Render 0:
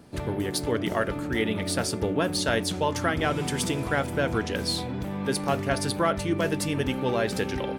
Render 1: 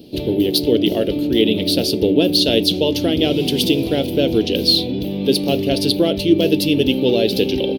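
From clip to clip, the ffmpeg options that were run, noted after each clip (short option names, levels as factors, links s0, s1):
-af "firequalizer=gain_entry='entry(110,0);entry(310,11);entry(530,6);entry(1100,-18);entry(1800,-13);entry(2800,11);entry(4100,13);entry(7500,-9);entry(13000,12)':delay=0.05:min_phase=1,volume=1.5"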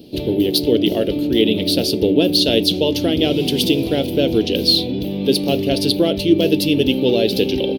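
-af anull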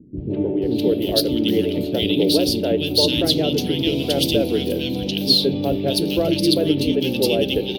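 -filter_complex "[0:a]acrossover=split=310|1900[s0][s1][s2];[s1]adelay=170[s3];[s2]adelay=620[s4];[s0][s3][s4]amix=inputs=3:normalize=0,volume=0.891"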